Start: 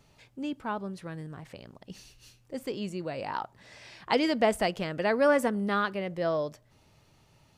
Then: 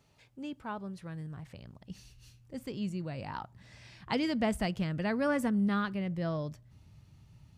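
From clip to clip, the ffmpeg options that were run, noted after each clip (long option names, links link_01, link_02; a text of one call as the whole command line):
ffmpeg -i in.wav -af "highpass=45,asubboost=boost=7:cutoff=180,volume=-5.5dB" out.wav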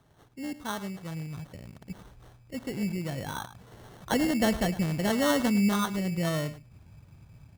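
ffmpeg -i in.wav -filter_complex "[0:a]asplit=2[link_01][link_02];[link_02]adelay=105,volume=-15dB,highshelf=frequency=4000:gain=-2.36[link_03];[link_01][link_03]amix=inputs=2:normalize=0,acrusher=samples=18:mix=1:aa=0.000001,volume=4.5dB" out.wav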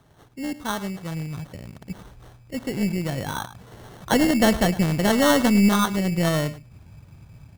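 ffmpeg -i in.wav -af "aeval=exprs='0.2*(cos(1*acos(clip(val(0)/0.2,-1,1)))-cos(1*PI/2))+0.01*(cos(4*acos(clip(val(0)/0.2,-1,1)))-cos(4*PI/2))+0.00316*(cos(7*acos(clip(val(0)/0.2,-1,1)))-cos(7*PI/2))':channel_layout=same,volume=7dB" out.wav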